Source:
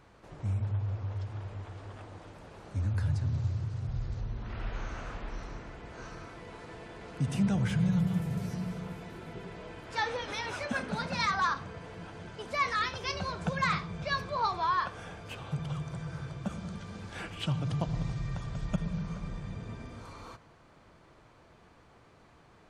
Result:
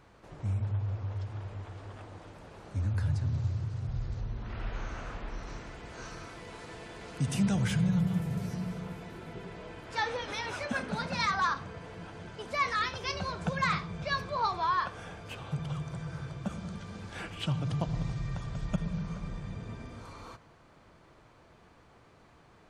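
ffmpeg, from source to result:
-filter_complex "[0:a]asettb=1/sr,asplit=3[s0][s1][s2];[s0]atrim=end=5.474[s3];[s1]atrim=start=5.47:end=7.81,asetpts=PTS-STARTPTS,afade=t=in:d=0.004:c=qsin,afade=t=out:st=2.336:d=0.004:c=qsin,highshelf=f=3100:g=8[s4];[s2]atrim=start=7.806[s5];[s3][s4]acrossfade=d=0.004:c1=hsin:c2=qsin[s6];[s6][s5]acrossfade=d=0.004:c1=qsin:c2=hsin"

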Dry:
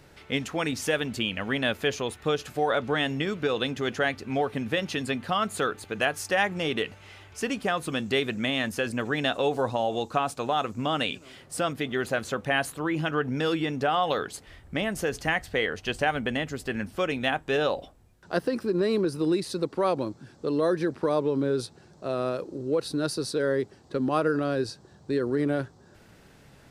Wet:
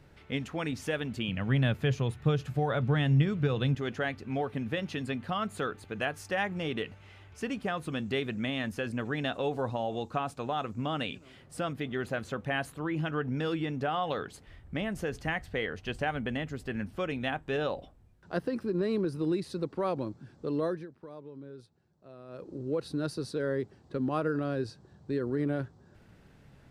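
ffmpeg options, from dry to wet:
-filter_complex "[0:a]asettb=1/sr,asplit=3[s0][s1][s2];[s0]atrim=end=1.284[s3];[s1]atrim=start=1.28:end=3.75,asetpts=PTS-STARTPTS,afade=t=in:d=0.004:c=qsin,afade=t=out:st=2.466:d=0.004:c=qsin,equalizer=f=130:t=o:w=0.77:g=14.5[s4];[s2]atrim=start=3.746[s5];[s3][s4]acrossfade=d=0.004:c1=hsin:c2=qsin[s6];[s6][s5]acrossfade=d=0.004:c1=qsin:c2=hsin,asplit=3[s7][s8][s9];[s7]atrim=end=20.87,asetpts=PTS-STARTPTS,afade=t=out:st=20.64:d=0.23:silence=0.16788[s10];[s8]atrim=start=20.87:end=22.28,asetpts=PTS-STARTPTS,volume=0.168[s11];[s9]atrim=start=22.28,asetpts=PTS-STARTPTS,afade=t=in:d=0.23:silence=0.16788[s12];[s10][s11][s12]concat=n=3:v=0:a=1,bass=f=250:g=6,treble=f=4000:g=-6,volume=0.473"

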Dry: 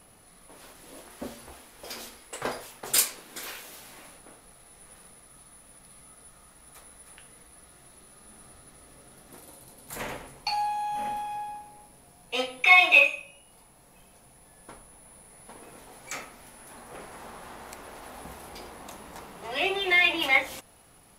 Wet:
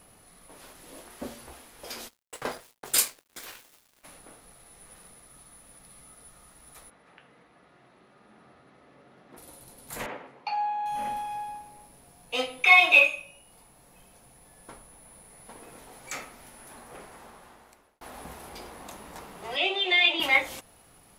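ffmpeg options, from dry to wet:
-filter_complex "[0:a]asplit=3[s0][s1][s2];[s0]afade=t=out:st=2.07:d=0.02[s3];[s1]aeval=exprs='sgn(val(0))*max(abs(val(0))-0.00708,0)':c=same,afade=t=in:st=2.07:d=0.02,afade=t=out:st=4.03:d=0.02[s4];[s2]afade=t=in:st=4.03:d=0.02[s5];[s3][s4][s5]amix=inputs=3:normalize=0,asplit=3[s6][s7][s8];[s6]afade=t=out:st=6.89:d=0.02[s9];[s7]highpass=150,lowpass=2600,afade=t=in:st=6.89:d=0.02,afade=t=out:st=9.36:d=0.02[s10];[s8]afade=t=in:st=9.36:d=0.02[s11];[s9][s10][s11]amix=inputs=3:normalize=0,asettb=1/sr,asplit=3[s12][s13][s14];[s12]atrim=end=10.064[s15];[s13]atrim=start=10.06:end=10.86,asetpts=PTS-STARTPTS,afade=t=in:d=0.004:c=qsin,afade=t=out:st=0.796:d=0.004:c=qsin,highpass=230,lowpass=2400[s16];[s14]atrim=start=10.856[s17];[s15][s16]acrossfade=d=0.004:c1=hsin:c2=qsin[s18];[s18][s17]acrossfade=d=0.004:c1=qsin:c2=hsin,asettb=1/sr,asplit=3[s19][s20][s21];[s19]atrim=end=19.564[s22];[s20]atrim=start=19.56:end=20.2,asetpts=PTS-STARTPTS,afade=t=in:d=0.004:c=qsin,afade=t=out:st=0.636:d=0.004:c=qsin,highpass=f=300:w=0.5412,highpass=f=300:w=1.3066,equalizer=f=440:t=q:w=4:g=-5,equalizer=f=1100:t=q:w=4:g=-6,equalizer=f=1700:t=q:w=4:g=-8,equalizer=f=3400:t=q:w=4:g=7,equalizer=f=5800:t=q:w=4:g=-6,lowpass=f=7300:w=0.5412,lowpass=f=7300:w=1.3066[s23];[s21]atrim=start=20.196[s24];[s22][s23]acrossfade=d=0.004:c1=hsin:c2=qsin[s25];[s25][s24]acrossfade=d=0.004:c1=qsin:c2=hsin,asplit=2[s26][s27];[s26]atrim=end=18.01,asetpts=PTS-STARTPTS,afade=t=out:st=16.65:d=1.36[s28];[s27]atrim=start=18.01,asetpts=PTS-STARTPTS,afade=t=in:d=0.004:c=hsin[s29];[s28][s29]concat=n=2:v=0:a=1"

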